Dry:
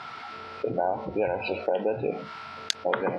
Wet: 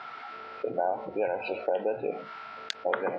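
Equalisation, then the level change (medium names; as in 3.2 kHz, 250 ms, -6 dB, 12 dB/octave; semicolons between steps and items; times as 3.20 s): band-pass filter 970 Hz, Q 0.52; peaking EQ 990 Hz -5 dB 0.43 oct; 0.0 dB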